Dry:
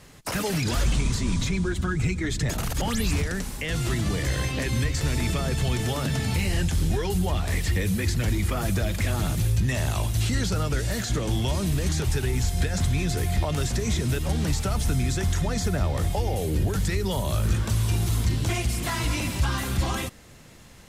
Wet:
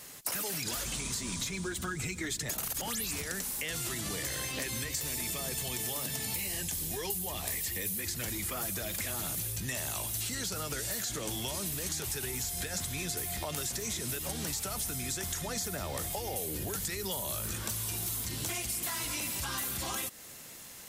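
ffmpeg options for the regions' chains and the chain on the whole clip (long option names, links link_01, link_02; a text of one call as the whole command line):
ffmpeg -i in.wav -filter_complex "[0:a]asettb=1/sr,asplit=3[link_01][link_02][link_03];[link_01]atrim=end=4.904[link_04];[link_02]atrim=start=4.9:end=8.01,asetpts=PTS-STARTPTS,afade=type=in:duration=0.004:curve=qsin,afade=type=out:start_time=3.106:duration=0.004:curve=qsin,highshelf=frequency=12000:gain=8.5,bandreject=frequency=1400:width=5.7[link_05];[link_03]atrim=start=8.006[link_06];[link_04][link_05]acrossfade=duration=0.004:curve1=hsin:curve2=qsin[link_07];[link_07][link_06]acrossfade=duration=0.004:curve1=qsin:curve2=hsin,aemphasis=mode=production:type=bsi,acompressor=threshold=-31dB:ratio=6,volume=-1.5dB" out.wav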